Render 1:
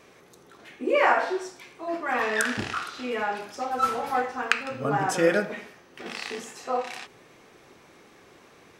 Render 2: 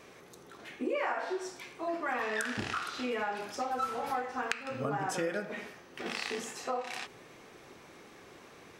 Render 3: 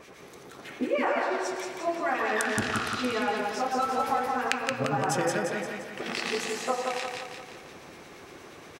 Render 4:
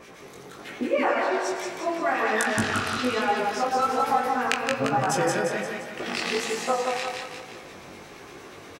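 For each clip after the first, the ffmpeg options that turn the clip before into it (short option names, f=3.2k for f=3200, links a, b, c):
-af "acompressor=threshold=-31dB:ratio=5"
-filter_complex "[0:a]acrossover=split=1700[a][b];[a]aeval=exprs='val(0)*(1-0.7/2+0.7/2*cos(2*PI*8.5*n/s))':c=same[c];[b]aeval=exprs='val(0)*(1-0.7/2-0.7/2*cos(2*PI*8.5*n/s))':c=same[d];[c][d]amix=inputs=2:normalize=0,aecho=1:1:174|348|522|696|870|1044|1218:0.708|0.368|0.191|0.0995|0.0518|0.0269|0.014,volume=7.5dB"
-filter_complex "[0:a]flanger=delay=17:depth=4.8:speed=1.2,asplit=2[a][b];[b]adelay=22,volume=-13dB[c];[a][c]amix=inputs=2:normalize=0,volume=6dB"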